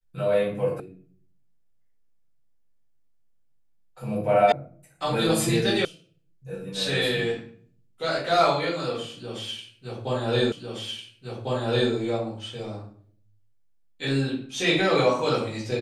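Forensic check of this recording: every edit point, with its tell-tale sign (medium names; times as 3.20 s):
0.80 s: sound stops dead
4.52 s: sound stops dead
5.85 s: sound stops dead
10.52 s: repeat of the last 1.4 s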